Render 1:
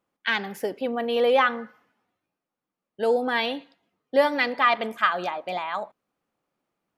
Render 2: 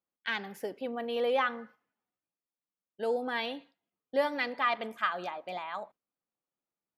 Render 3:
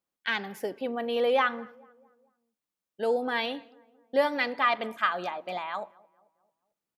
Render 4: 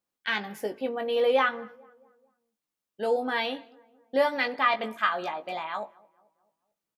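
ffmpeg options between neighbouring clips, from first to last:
ffmpeg -i in.wav -af "agate=range=-8dB:threshold=-46dB:ratio=16:detection=peak,volume=-8.5dB" out.wav
ffmpeg -i in.wav -filter_complex "[0:a]asplit=2[link_01][link_02];[link_02]adelay=221,lowpass=frequency=1200:poles=1,volume=-23dB,asplit=2[link_03][link_04];[link_04]adelay=221,lowpass=frequency=1200:poles=1,volume=0.53,asplit=2[link_05][link_06];[link_06]adelay=221,lowpass=frequency=1200:poles=1,volume=0.53,asplit=2[link_07][link_08];[link_08]adelay=221,lowpass=frequency=1200:poles=1,volume=0.53[link_09];[link_01][link_03][link_05][link_07][link_09]amix=inputs=5:normalize=0,volume=4dB" out.wav
ffmpeg -i in.wav -filter_complex "[0:a]asplit=2[link_01][link_02];[link_02]adelay=19,volume=-6.5dB[link_03];[link_01][link_03]amix=inputs=2:normalize=0" out.wav

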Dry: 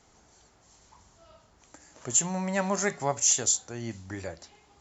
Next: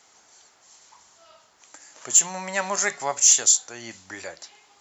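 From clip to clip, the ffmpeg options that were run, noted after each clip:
ffmpeg -i in.wav -af "highpass=frequency=1300:poles=1,acontrast=82,volume=1dB" out.wav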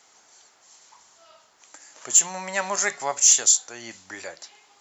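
ffmpeg -i in.wav -af "lowshelf=frequency=140:gain=-7" out.wav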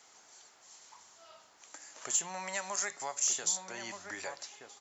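ffmpeg -i in.wav -filter_complex "[0:a]acrossover=split=640|5000[link_01][link_02][link_03];[link_01]acompressor=threshold=-45dB:ratio=4[link_04];[link_02]acompressor=threshold=-35dB:ratio=4[link_05];[link_03]acompressor=threshold=-31dB:ratio=4[link_06];[link_04][link_05][link_06]amix=inputs=3:normalize=0,asplit=2[link_07][link_08];[link_08]adelay=1224,volume=-6dB,highshelf=frequency=4000:gain=-27.6[link_09];[link_07][link_09]amix=inputs=2:normalize=0,volume=-3dB" out.wav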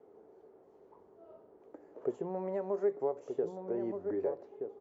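ffmpeg -i in.wav -af "lowpass=frequency=420:width_type=q:width=4.9,volume=6.5dB" out.wav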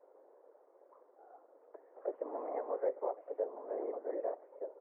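ffmpeg -i in.wav -af "afftfilt=real='hypot(re,im)*cos(2*PI*random(0))':imag='hypot(re,im)*sin(2*PI*random(1))':win_size=512:overlap=0.75,highpass=frequency=200:width_type=q:width=0.5412,highpass=frequency=200:width_type=q:width=1.307,lowpass=frequency=2000:width_type=q:width=0.5176,lowpass=frequency=2000:width_type=q:width=0.7071,lowpass=frequency=2000:width_type=q:width=1.932,afreqshift=98,volume=2.5dB" out.wav

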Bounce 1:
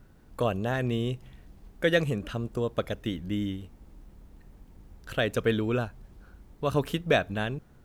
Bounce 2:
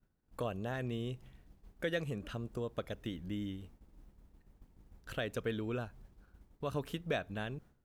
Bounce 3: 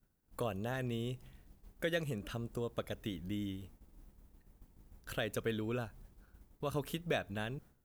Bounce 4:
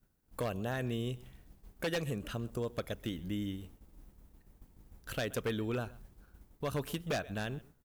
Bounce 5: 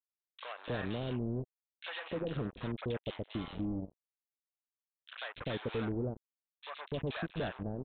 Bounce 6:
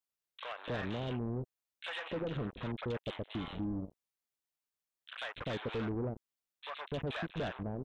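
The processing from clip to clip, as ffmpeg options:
ffmpeg -i in.wav -af "agate=range=-33dB:threshold=-43dB:ratio=3:detection=peak,acompressor=threshold=-41dB:ratio=1.5,volume=-4dB" out.wav
ffmpeg -i in.wav -af "highshelf=frequency=8200:gain=11.5" out.wav
ffmpeg -i in.wav -af "aecho=1:1:128:0.0891,aeval=exprs='0.0355*(abs(mod(val(0)/0.0355+3,4)-2)-1)':channel_layout=same,volume=2.5dB" out.wav
ffmpeg -i in.wav -filter_complex "[0:a]aresample=8000,acrusher=bits=5:mix=0:aa=0.5,aresample=44100,acrossover=split=740|2300[link_01][link_02][link_03];[link_02]adelay=40[link_04];[link_01]adelay=290[link_05];[link_05][link_04][link_03]amix=inputs=3:normalize=0" out.wav
ffmpeg -i in.wav -af "asoftclip=type=tanh:threshold=-33.5dB,volume=2.5dB" out.wav

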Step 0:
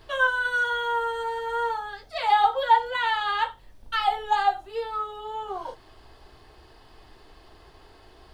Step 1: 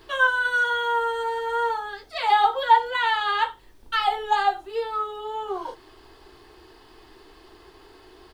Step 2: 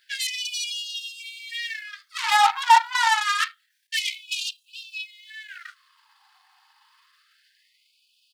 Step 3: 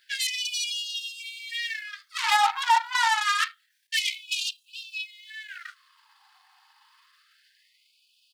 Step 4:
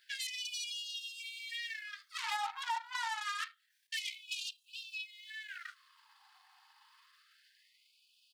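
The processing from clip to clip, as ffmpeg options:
ffmpeg -i in.wav -af "firequalizer=gain_entry='entry(170,0);entry(360,12);entry(580,0);entry(920,6)':delay=0.05:min_phase=1,acrusher=bits=10:mix=0:aa=0.000001,volume=-3.5dB" out.wav
ffmpeg -i in.wav -af "apsyclip=12.5dB,aeval=exprs='1.12*(cos(1*acos(clip(val(0)/1.12,-1,1)))-cos(1*PI/2))+0.2*(cos(3*acos(clip(val(0)/1.12,-1,1)))-cos(3*PI/2))+0.0355*(cos(7*acos(clip(val(0)/1.12,-1,1)))-cos(7*PI/2))+0.0891*(cos(8*acos(clip(val(0)/1.12,-1,1)))-cos(8*PI/2))':channel_layout=same,afftfilt=real='re*gte(b*sr/1024,720*pow(2500/720,0.5+0.5*sin(2*PI*0.27*pts/sr)))':imag='im*gte(b*sr/1024,720*pow(2500/720,0.5+0.5*sin(2*PI*0.27*pts/sr)))':win_size=1024:overlap=0.75,volume=-6dB" out.wav
ffmpeg -i in.wav -af "alimiter=limit=-11dB:level=0:latency=1:release=159" out.wav
ffmpeg -i in.wav -af "acompressor=threshold=-38dB:ratio=2,volume=-4.5dB" out.wav

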